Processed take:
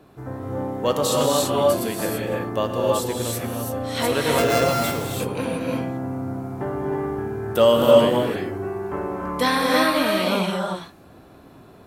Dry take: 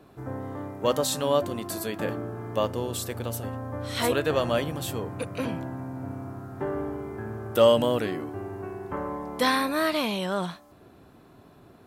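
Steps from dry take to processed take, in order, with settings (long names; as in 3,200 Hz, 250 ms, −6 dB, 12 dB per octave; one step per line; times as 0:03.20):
0:04.38–0:04.84: samples sorted by size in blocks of 64 samples
reverb whose tail is shaped and stops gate 360 ms rising, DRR −2 dB
level +2 dB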